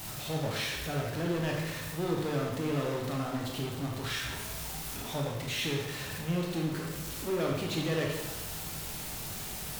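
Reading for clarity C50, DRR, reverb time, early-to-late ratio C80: 2.0 dB, −1.0 dB, 1.2 s, 4.5 dB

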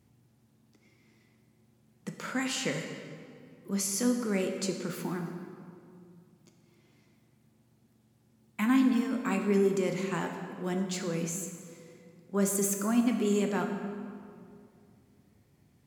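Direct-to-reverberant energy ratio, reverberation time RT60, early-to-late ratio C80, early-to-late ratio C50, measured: 4.0 dB, 2.3 s, 7.0 dB, 6.0 dB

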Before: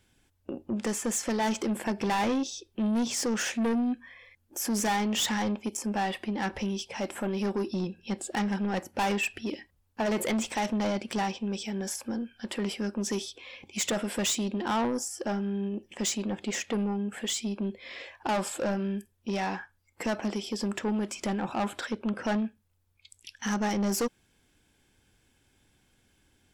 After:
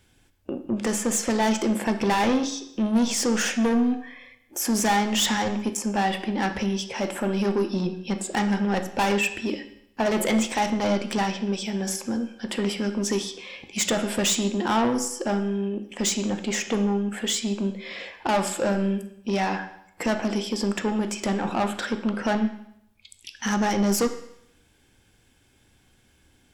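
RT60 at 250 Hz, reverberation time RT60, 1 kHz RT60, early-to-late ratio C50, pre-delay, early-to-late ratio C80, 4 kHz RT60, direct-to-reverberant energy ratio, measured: 0.75 s, 0.75 s, 0.75 s, 10.5 dB, 11 ms, 13.5 dB, 0.75 s, 7.5 dB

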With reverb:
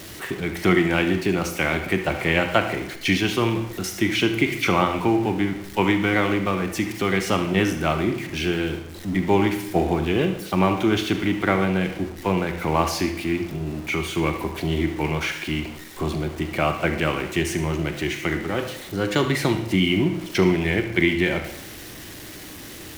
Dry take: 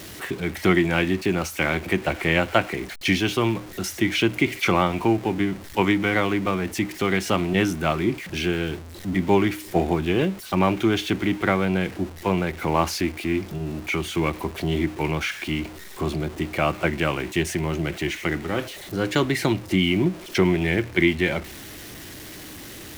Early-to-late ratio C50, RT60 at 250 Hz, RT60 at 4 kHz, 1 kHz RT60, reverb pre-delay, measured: 8.5 dB, 0.75 s, 0.70 s, 0.75 s, 35 ms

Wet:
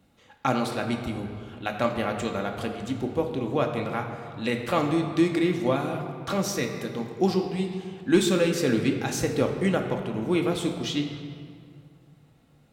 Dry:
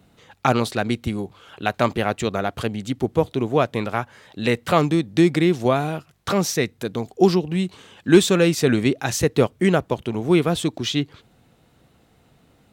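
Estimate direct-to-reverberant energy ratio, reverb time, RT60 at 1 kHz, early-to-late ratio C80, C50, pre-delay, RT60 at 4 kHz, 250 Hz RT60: 2.5 dB, 2.2 s, 2.1 s, 7.0 dB, 6.0 dB, 4 ms, 1.5 s, 2.3 s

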